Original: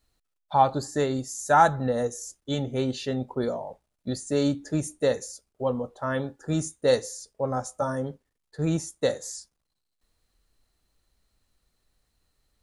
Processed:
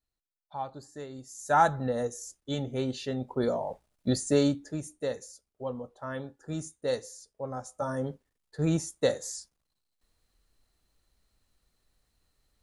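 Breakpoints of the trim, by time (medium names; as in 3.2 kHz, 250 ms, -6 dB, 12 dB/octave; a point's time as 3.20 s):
1.11 s -16 dB
1.56 s -4 dB
3.19 s -4 dB
3.70 s +3.5 dB
4.27 s +3.5 dB
4.77 s -8.5 dB
7.63 s -8.5 dB
8.06 s -1 dB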